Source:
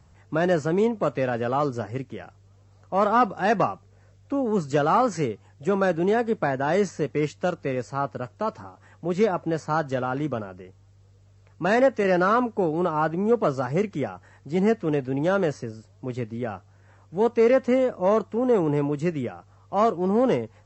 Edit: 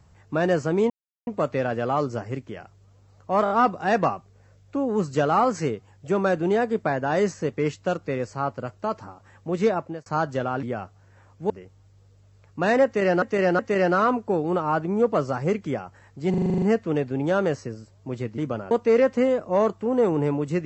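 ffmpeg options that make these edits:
ffmpeg -i in.wav -filter_complex "[0:a]asplit=20[link_01][link_02][link_03][link_04][link_05][link_06][link_07][link_08][link_09][link_10][link_11][link_12][link_13][link_14][link_15][link_16][link_17][link_18][link_19][link_20];[link_01]atrim=end=0.9,asetpts=PTS-STARTPTS,afade=type=out:start_time=0.896:duration=0.004:curve=hsin,apad=pad_dur=0.37[link_21];[link_02]atrim=start=0.9:end=3.092,asetpts=PTS-STARTPTS,afade=type=in:duration=0.004:curve=hsin[link_22];[link_03]atrim=start=3.068:end=3.092[link_23];[link_04]atrim=start=3.068:end=3.092[link_24];[link_05]atrim=start=3.068:end=9.63,asetpts=PTS-STARTPTS,afade=type=out:start_time=6.262:duration=0.3[link_25];[link_06]atrim=start=9.63:end=10.202,asetpts=PTS-STARTPTS,afade=type=in:duration=0.004:curve=hsin[link_26];[link_07]atrim=start=16.348:end=17.222[link_27];[link_08]atrim=start=10.528:end=12.252[link_28];[link_09]atrim=start=11.878:end=12.252[link_29];[link_10]atrim=start=11.878:end=14.632[link_30];[link_11]atrim=start=14.588:end=14.632[link_31];[link_12]atrim=start=14.588:end=14.632[link_32];[link_13]atrim=start=14.588:end=14.632[link_33];[link_14]atrim=start=14.588:end=14.632[link_34];[link_15]atrim=start=14.588:end=14.632[link_35];[link_16]atrim=start=14.588:end=14.632[link_36];[link_17]atrim=start=14.588:end=14.632[link_37];[link_18]atrim=start=14.588:end=16.352[link_38];[link_19]atrim=start=10.198:end=10.532[link_39];[link_20]atrim=start=17.218[link_40];[link_21][link_22]concat=n=2:v=0:a=1[link_41];[link_41][link_23]acrossfade=duration=0.004:curve1=hsin:curve2=hsin[link_42];[link_42][link_24]acrossfade=duration=0.004:curve1=hsin:curve2=hsin[link_43];[link_25][link_26]concat=n=2:v=0:a=1[link_44];[link_43][link_44]acrossfade=duration=0.004:curve1=hsin:curve2=hsin[link_45];[link_45][link_27]acrossfade=duration=0.004:curve1=hsin:curve2=hsin[link_46];[link_46][link_28]acrossfade=duration=0.004:curve1=hsin:curve2=hsin[link_47];[link_47][link_29]acrossfade=duration=0.004:curve1=hsin:curve2=hsin[link_48];[link_48][link_30]acrossfade=duration=0.004:curve1=hsin:curve2=hsin[link_49];[link_49][link_31]acrossfade=duration=0.004:curve1=hsin:curve2=hsin[link_50];[link_50][link_32]acrossfade=duration=0.004:curve1=hsin:curve2=hsin[link_51];[link_51][link_33]acrossfade=duration=0.004:curve1=hsin:curve2=hsin[link_52];[link_52][link_34]acrossfade=duration=0.004:curve1=hsin:curve2=hsin[link_53];[link_53][link_35]acrossfade=duration=0.004:curve1=hsin:curve2=hsin[link_54];[link_54][link_36]acrossfade=duration=0.004:curve1=hsin:curve2=hsin[link_55];[link_55][link_37]acrossfade=duration=0.004:curve1=hsin:curve2=hsin[link_56];[link_56][link_38]acrossfade=duration=0.004:curve1=hsin:curve2=hsin[link_57];[link_57][link_39]acrossfade=duration=0.004:curve1=hsin:curve2=hsin[link_58];[link_58][link_40]acrossfade=duration=0.004:curve1=hsin:curve2=hsin" out.wav

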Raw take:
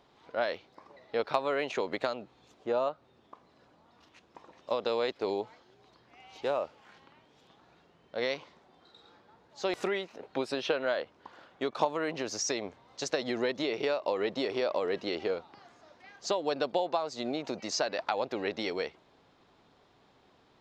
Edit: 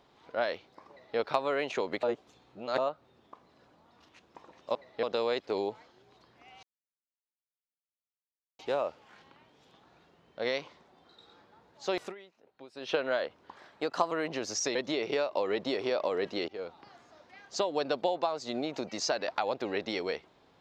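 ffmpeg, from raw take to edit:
ffmpeg -i in.wav -filter_complex "[0:a]asplit=12[link_01][link_02][link_03][link_04][link_05][link_06][link_07][link_08][link_09][link_10][link_11][link_12];[link_01]atrim=end=2.032[link_13];[link_02]atrim=start=2.028:end=2.782,asetpts=PTS-STARTPTS,areverse[link_14];[link_03]atrim=start=2.778:end=4.752[link_15];[link_04]atrim=start=0.898:end=1.182[link_16];[link_05]atrim=start=4.748:end=6.35,asetpts=PTS-STARTPTS,afade=type=out:start_time=1.598:duration=0.004:curve=hsin,apad=pad_dur=1.96[link_17];[link_06]atrim=start=6.35:end=9.91,asetpts=PTS-STARTPTS,afade=type=in:duration=0.004:curve=hsin,afade=type=out:start_time=3.36:duration=0.2:silence=0.125893[link_18];[link_07]atrim=start=9.91:end=10.51,asetpts=PTS-STARTPTS,volume=-18dB[link_19];[link_08]atrim=start=10.51:end=11.324,asetpts=PTS-STARTPTS,afade=type=in:duration=0.2:silence=0.125893[link_20];[link_09]atrim=start=11.32:end=11.95,asetpts=PTS-STARTPTS,asetrate=50274,aresample=44100,atrim=end_sample=24371,asetpts=PTS-STARTPTS[link_21];[link_10]atrim=start=11.946:end=12.592[link_22];[link_11]atrim=start=13.458:end=15.19,asetpts=PTS-STARTPTS,afade=type=out:start_time=1.728:duration=0.004:curve=hsin:silence=0.0794328[link_23];[link_12]atrim=start=15.19,asetpts=PTS-STARTPTS,afade=type=in:duration=0.3:silence=0.0794328[link_24];[link_13][link_14]acrossfade=duration=0.004:curve1=hsin:curve2=hsin[link_25];[link_25][link_15]acrossfade=duration=0.004:curve1=hsin:curve2=hsin[link_26];[link_26][link_16]acrossfade=duration=0.004:curve1=hsin:curve2=hsin[link_27];[link_17][link_18][link_19][link_20]concat=n=4:v=0:a=1[link_28];[link_27][link_28]acrossfade=duration=0.004:curve1=hsin:curve2=hsin[link_29];[link_29][link_21]acrossfade=duration=0.004:curve1=hsin:curve2=hsin[link_30];[link_30][link_22]acrossfade=duration=0.004:curve1=hsin:curve2=hsin[link_31];[link_23][link_24]concat=n=2:v=0:a=1[link_32];[link_31][link_32]acrossfade=duration=0.004:curve1=hsin:curve2=hsin" out.wav

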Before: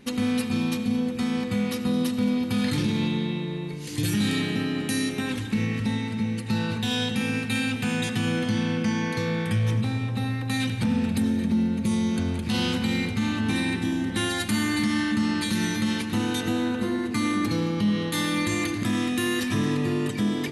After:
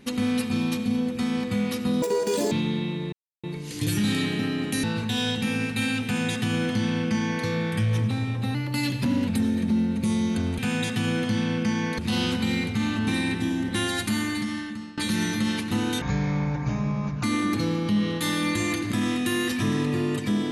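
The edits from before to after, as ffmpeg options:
ffmpeg -i in.wav -filter_complex "[0:a]asplit=12[link_01][link_02][link_03][link_04][link_05][link_06][link_07][link_08][link_09][link_10][link_11][link_12];[link_01]atrim=end=2.024[link_13];[link_02]atrim=start=2.02:end=2.99,asetpts=PTS-STARTPTS,asetrate=86436,aresample=44100[link_14];[link_03]atrim=start=2.986:end=3.6,asetpts=PTS-STARTPTS,afade=type=out:start_time=0.61:duration=0.004:curve=hsin,apad=pad_dur=0.31[link_15];[link_04]atrim=start=3.6:end=5.002,asetpts=PTS-STARTPTS,afade=type=in:duration=0.004:curve=hsin[link_16];[link_05]atrim=start=6.568:end=10.284[link_17];[link_06]atrim=start=10.28:end=11.09,asetpts=PTS-STARTPTS,asetrate=48951,aresample=44100,atrim=end_sample=32181,asetpts=PTS-STARTPTS[link_18];[link_07]atrim=start=11.086:end=12.402[link_19];[link_08]atrim=start=7.778:end=9.182[link_20];[link_09]atrim=start=12.398:end=15.39,asetpts=PTS-STARTPTS,afade=type=out:start_time=2.022:duration=0.97:silence=0.0794328[link_21];[link_10]atrim=start=15.39:end=16.434,asetpts=PTS-STARTPTS,afade=type=in:duration=0.004:curve=hsin:silence=0.0794328[link_22];[link_11]atrim=start=16.43:end=17.15,asetpts=PTS-STARTPTS,asetrate=26019,aresample=44100[link_23];[link_12]atrim=start=17.146[link_24];[link_13][link_14]acrossfade=duration=0.004:curve1=hsin:curve2=hsin[link_25];[link_15][link_16]concat=n=2:v=0:a=1[link_26];[link_25][link_26]acrossfade=duration=0.004:curve1=hsin:curve2=hsin[link_27];[link_27][link_17]acrossfade=duration=0.004:curve1=hsin:curve2=hsin[link_28];[link_28][link_18]acrossfade=duration=0.004:curve1=hsin:curve2=hsin[link_29];[link_29][link_19]acrossfade=duration=0.004:curve1=hsin:curve2=hsin[link_30];[link_30][link_20]acrossfade=duration=0.004:curve1=hsin:curve2=hsin[link_31];[link_21][link_22]concat=n=2:v=0:a=1[link_32];[link_31][link_32]acrossfade=duration=0.004:curve1=hsin:curve2=hsin[link_33];[link_33][link_23]acrossfade=duration=0.004:curve1=hsin:curve2=hsin[link_34];[link_34][link_24]acrossfade=duration=0.004:curve1=hsin:curve2=hsin" out.wav

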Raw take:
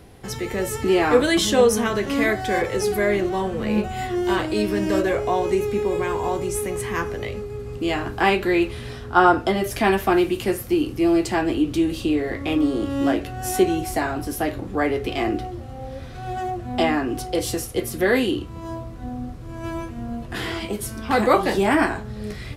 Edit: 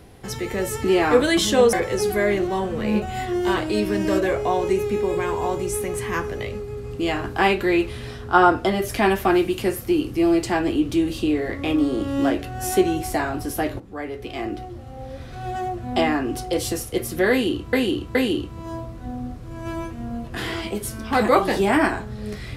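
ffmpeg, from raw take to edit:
ffmpeg -i in.wav -filter_complex "[0:a]asplit=5[link_01][link_02][link_03][link_04][link_05];[link_01]atrim=end=1.732[link_06];[link_02]atrim=start=2.548:end=14.62,asetpts=PTS-STARTPTS,afade=type=out:start_time=12.068:duration=0.004:curve=hsin:silence=0.223872[link_07];[link_03]atrim=start=14.62:end=18.552,asetpts=PTS-STARTPTS,afade=type=in:duration=1.58:silence=0.223872[link_08];[link_04]atrim=start=18.128:end=18.552[link_09];[link_05]atrim=start=18.128[link_10];[link_07][link_08]concat=n=2:v=0:a=1[link_11];[link_06][link_11]acrossfade=duration=0.004:curve1=hsin:curve2=hsin[link_12];[link_12][link_09]acrossfade=duration=0.004:curve1=hsin:curve2=hsin[link_13];[link_13][link_10]acrossfade=duration=0.004:curve1=hsin:curve2=hsin" out.wav

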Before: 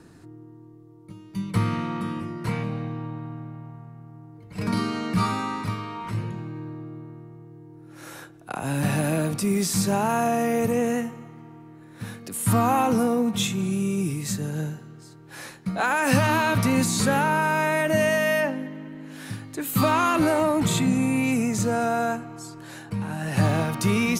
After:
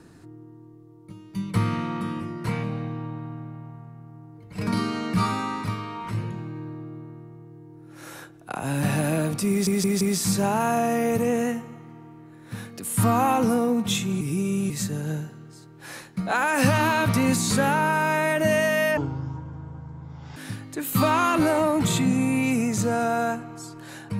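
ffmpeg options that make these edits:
ffmpeg -i in.wav -filter_complex "[0:a]asplit=8[link_01][link_02][link_03][link_04][link_05][link_06][link_07][link_08];[link_01]atrim=end=9.672[link_09];[link_02]atrim=start=9.498:end=9.672[link_10];[link_03]atrim=start=9.498:end=9.672[link_11];[link_04]atrim=start=9.498:end=13.702[link_12];[link_05]atrim=start=13.698:end=14.192,asetpts=PTS-STARTPTS,areverse[link_13];[link_06]atrim=start=14.188:end=18.464[link_14];[link_07]atrim=start=18.46:end=19.17,asetpts=PTS-STARTPTS,asetrate=22491,aresample=44100,atrim=end_sample=61394,asetpts=PTS-STARTPTS[link_15];[link_08]atrim=start=19.166[link_16];[link_09][link_10]acrossfade=duration=0.004:curve1=hsin:curve2=hsin[link_17];[link_17][link_11]acrossfade=duration=0.004:curve1=hsin:curve2=hsin[link_18];[link_18][link_12]acrossfade=duration=0.004:curve1=hsin:curve2=hsin[link_19];[link_19][link_13]acrossfade=duration=0.004:curve1=hsin:curve2=hsin[link_20];[link_20][link_14]acrossfade=duration=0.004:curve1=hsin:curve2=hsin[link_21];[link_21][link_15]acrossfade=duration=0.004:curve1=hsin:curve2=hsin[link_22];[link_22][link_16]acrossfade=duration=0.004:curve1=hsin:curve2=hsin" out.wav

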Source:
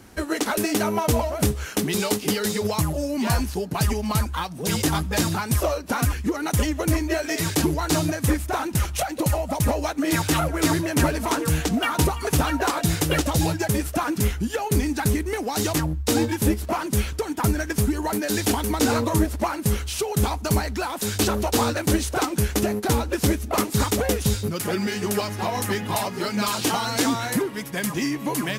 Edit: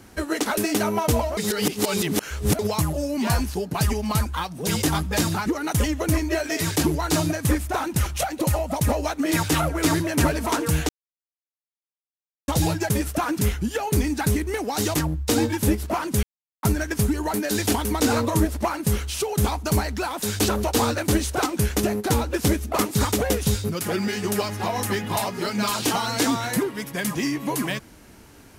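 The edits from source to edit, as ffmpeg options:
ffmpeg -i in.wav -filter_complex "[0:a]asplit=8[link_01][link_02][link_03][link_04][link_05][link_06][link_07][link_08];[link_01]atrim=end=1.372[link_09];[link_02]atrim=start=1.368:end=2.592,asetpts=PTS-STARTPTS,areverse[link_10];[link_03]atrim=start=2.588:end=5.462[link_11];[link_04]atrim=start=6.248:end=11.68,asetpts=PTS-STARTPTS,afade=type=out:start_time=5.428:duration=0.004:curve=hsin[link_12];[link_05]atrim=start=11.68:end=13.27,asetpts=PTS-STARTPTS,volume=0[link_13];[link_06]atrim=start=13.27:end=17.02,asetpts=PTS-STARTPTS,afade=type=in:duration=0.004:curve=hsin,afade=type=out:start_time=3.746:duration=0.004:curve=hsin[link_14];[link_07]atrim=start=17.02:end=17.42,asetpts=PTS-STARTPTS,volume=0[link_15];[link_08]atrim=start=17.42,asetpts=PTS-STARTPTS,afade=type=in:duration=0.004:curve=hsin[link_16];[link_09][link_10]acrossfade=duration=0.004:curve1=hsin:curve2=hsin[link_17];[link_17][link_11]acrossfade=duration=0.004:curve1=hsin:curve2=hsin[link_18];[link_12][link_13][link_14][link_15][link_16]concat=n=5:v=0:a=1[link_19];[link_18][link_19]acrossfade=duration=0.004:curve1=hsin:curve2=hsin" out.wav

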